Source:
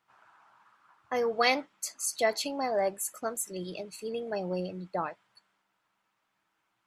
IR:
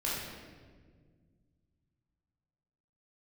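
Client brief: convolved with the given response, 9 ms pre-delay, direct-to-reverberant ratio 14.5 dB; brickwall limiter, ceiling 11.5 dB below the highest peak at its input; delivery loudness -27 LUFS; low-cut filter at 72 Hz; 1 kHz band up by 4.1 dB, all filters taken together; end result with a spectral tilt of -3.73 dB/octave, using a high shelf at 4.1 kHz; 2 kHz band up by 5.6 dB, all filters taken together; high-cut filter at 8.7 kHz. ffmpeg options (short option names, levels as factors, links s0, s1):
-filter_complex "[0:a]highpass=72,lowpass=8700,equalizer=f=1000:t=o:g=5,equalizer=f=2000:t=o:g=6.5,highshelf=f=4100:g=-6,alimiter=limit=0.119:level=0:latency=1,asplit=2[s0][s1];[1:a]atrim=start_sample=2205,adelay=9[s2];[s1][s2]afir=irnorm=-1:irlink=0,volume=0.0891[s3];[s0][s3]amix=inputs=2:normalize=0,volume=1.78"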